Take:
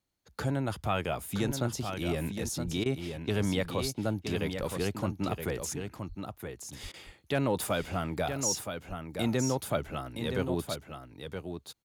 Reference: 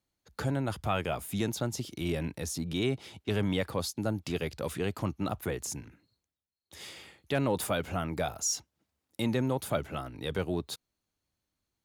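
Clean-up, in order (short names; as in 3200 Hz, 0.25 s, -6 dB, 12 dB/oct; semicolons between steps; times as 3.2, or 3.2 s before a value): de-plosive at 1.46/2.64/3.81/4.59/6.08/6.82/8.88; interpolate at 2.84/6.92, 17 ms; inverse comb 0.97 s -7 dB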